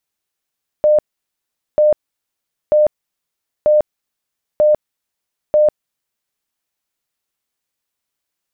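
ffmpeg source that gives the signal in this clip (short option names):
-f lavfi -i "aevalsrc='0.398*sin(2*PI*604*mod(t,0.94))*lt(mod(t,0.94),89/604)':d=5.64:s=44100"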